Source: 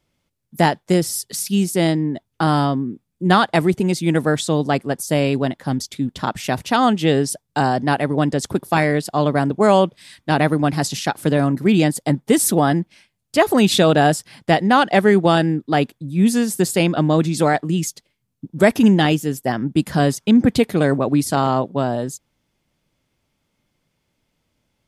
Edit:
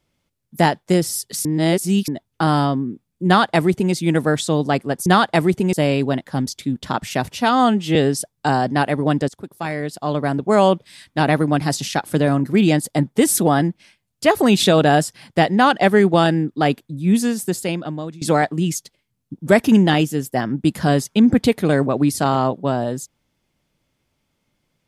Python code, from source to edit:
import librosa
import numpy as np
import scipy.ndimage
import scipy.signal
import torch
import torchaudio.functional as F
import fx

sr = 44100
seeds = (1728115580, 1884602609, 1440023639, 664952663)

y = fx.edit(x, sr, fx.reverse_span(start_s=1.45, length_s=0.63),
    fx.duplicate(start_s=3.26, length_s=0.67, to_s=5.06),
    fx.stretch_span(start_s=6.64, length_s=0.43, factor=1.5),
    fx.fade_in_from(start_s=8.4, length_s=1.42, floor_db=-17.5),
    fx.fade_out_to(start_s=16.15, length_s=1.18, floor_db=-21.0), tone=tone)